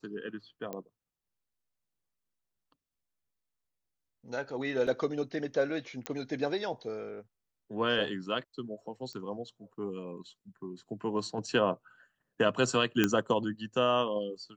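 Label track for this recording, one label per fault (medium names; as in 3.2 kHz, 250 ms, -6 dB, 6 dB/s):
0.730000	0.730000	pop -24 dBFS
4.870000	4.870000	dropout 3.8 ms
6.060000	6.060000	pop -19 dBFS
9.130000	9.130000	pop -31 dBFS
13.040000	13.040000	pop -11 dBFS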